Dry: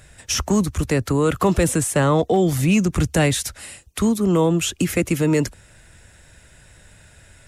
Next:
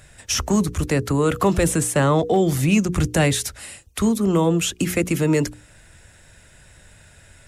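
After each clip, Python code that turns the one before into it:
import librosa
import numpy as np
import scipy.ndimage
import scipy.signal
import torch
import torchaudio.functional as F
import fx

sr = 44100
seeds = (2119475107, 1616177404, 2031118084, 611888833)

y = fx.hum_notches(x, sr, base_hz=60, count=8)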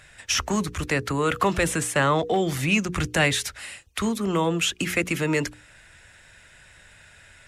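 y = fx.peak_eq(x, sr, hz=2100.0, db=11.0, octaves=2.8)
y = y * 10.0 ** (-7.5 / 20.0)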